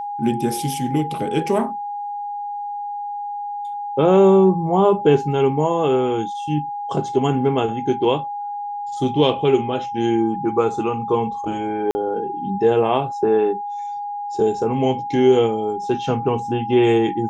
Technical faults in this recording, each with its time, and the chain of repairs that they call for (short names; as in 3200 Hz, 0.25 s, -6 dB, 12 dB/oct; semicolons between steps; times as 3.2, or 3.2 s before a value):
tone 820 Hz -25 dBFS
11.91–11.95 gap 40 ms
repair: notch 820 Hz, Q 30; interpolate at 11.91, 40 ms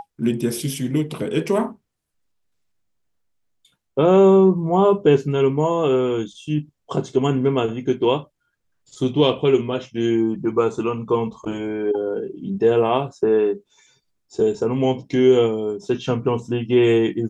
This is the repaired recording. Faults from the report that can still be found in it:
none